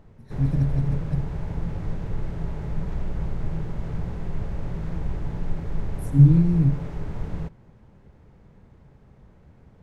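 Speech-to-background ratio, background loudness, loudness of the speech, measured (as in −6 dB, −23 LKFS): 11.5 dB, −32.5 LKFS, −21.0 LKFS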